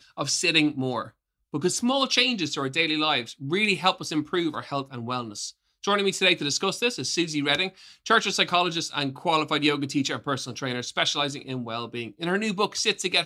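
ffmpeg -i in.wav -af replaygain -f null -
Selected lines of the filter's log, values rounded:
track_gain = +2.5 dB
track_peak = 0.337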